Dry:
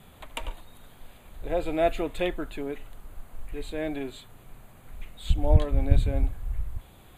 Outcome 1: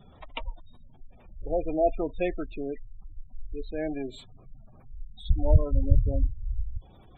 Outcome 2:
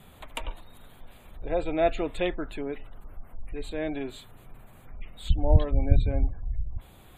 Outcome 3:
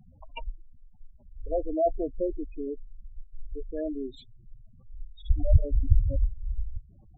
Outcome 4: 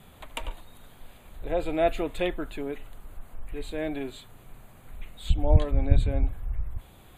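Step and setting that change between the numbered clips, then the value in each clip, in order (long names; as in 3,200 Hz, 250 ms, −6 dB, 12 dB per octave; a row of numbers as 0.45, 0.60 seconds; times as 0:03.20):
gate on every frequency bin, under each frame's peak: −20, −40, −10, −55 decibels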